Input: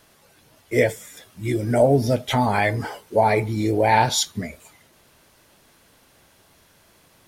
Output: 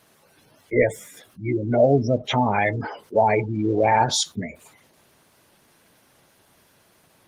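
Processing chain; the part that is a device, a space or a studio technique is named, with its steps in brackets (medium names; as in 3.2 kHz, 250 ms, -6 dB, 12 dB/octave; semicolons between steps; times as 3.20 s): noise-suppressed video call (high-pass 100 Hz 12 dB/octave; spectral gate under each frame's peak -20 dB strong; Opus 20 kbps 48 kHz)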